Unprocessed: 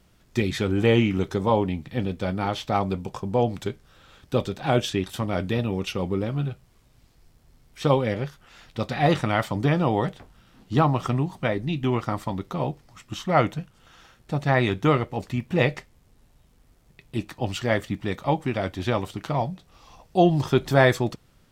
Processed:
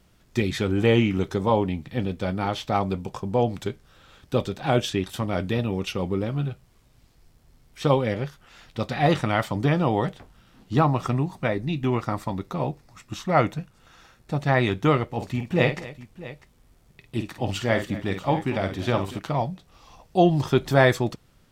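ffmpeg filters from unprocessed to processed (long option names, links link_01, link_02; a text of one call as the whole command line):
ffmpeg -i in.wav -filter_complex "[0:a]asettb=1/sr,asplit=3[link_01][link_02][link_03];[link_01]atrim=end=10.764[link_04];[link_02]atrim=start=10.76:end=14.33,asetpts=PTS-STARTPTS,afade=type=in:duration=0.004:curve=qsin,afade=type=out:start_time=3.566:duration=0.004:curve=qsin,bandreject=frequency=3100:width=9.6[link_05];[link_03]atrim=start=14.326[link_06];[link_04][link_05]acrossfade=duration=0.004:curve1=hsin:curve2=qsin[link_07];[link_07][link_06]acrossfade=duration=0.004:curve1=qsin:curve2=hsin,asettb=1/sr,asplit=3[link_08][link_09][link_10];[link_08]atrim=end=15.124[link_11];[link_09]atrim=start=15.12:end=19.19,asetpts=PTS-STARTPTS,afade=type=in:duration=0.004:curve=qsin,afade=type=out:start_time=4.066:duration=0.004:curve=qsin,aecho=1:1:51|241|649:0.398|0.133|0.141,atrim=end_sample=179487[link_12];[link_10]atrim=start=19.186[link_13];[link_11][link_12]acrossfade=duration=0.004:curve1=hsin:curve2=qsin[link_14];[link_14][link_13]acrossfade=duration=0.004:curve1=qsin:curve2=hsin" out.wav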